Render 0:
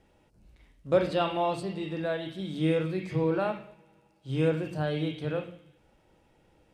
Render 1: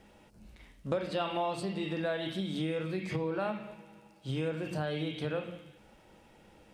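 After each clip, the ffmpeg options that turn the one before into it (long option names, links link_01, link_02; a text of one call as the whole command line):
ffmpeg -i in.wav -af "equalizer=frequency=210:width=7.7:gain=9.5,acompressor=threshold=-35dB:ratio=6,lowshelf=frequency=460:gain=-5.5,volume=7.5dB" out.wav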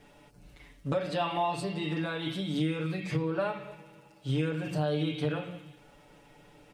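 ffmpeg -i in.wav -af "aecho=1:1:6.9:0.98" out.wav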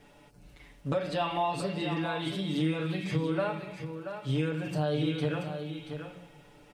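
ffmpeg -i in.wav -af "aecho=1:1:681:0.376" out.wav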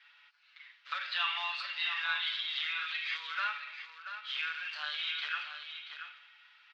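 ffmpeg -i in.wav -filter_complex "[0:a]asplit=2[link_01][link_02];[link_02]aeval=exprs='sgn(val(0))*max(abs(val(0))-0.00631,0)':channel_layout=same,volume=-6dB[link_03];[link_01][link_03]amix=inputs=2:normalize=0,acrusher=bits=5:mode=log:mix=0:aa=0.000001,asuperpass=centerf=2400:order=8:qfactor=0.75,volume=3.5dB" out.wav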